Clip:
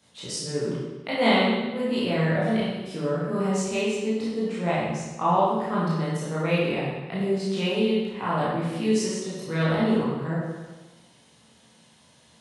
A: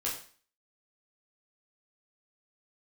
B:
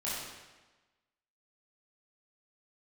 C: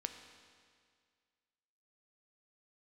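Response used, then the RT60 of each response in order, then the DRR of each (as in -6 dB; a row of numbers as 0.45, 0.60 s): B; 0.45, 1.2, 2.0 s; -5.0, -9.5, 6.0 dB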